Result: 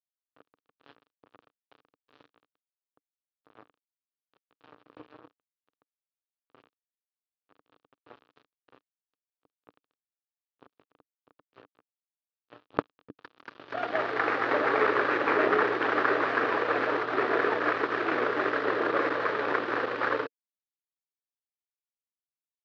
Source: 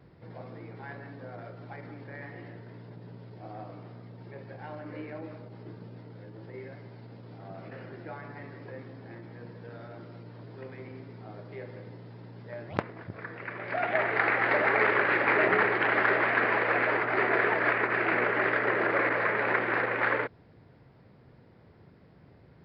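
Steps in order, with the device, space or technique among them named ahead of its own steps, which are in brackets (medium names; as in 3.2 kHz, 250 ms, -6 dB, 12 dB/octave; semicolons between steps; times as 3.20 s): blown loudspeaker (crossover distortion -35.5 dBFS; cabinet simulation 130–4100 Hz, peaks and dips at 190 Hz -6 dB, 290 Hz +7 dB, 460 Hz +6 dB, 1.2 kHz +6 dB, 2.1 kHz -7 dB)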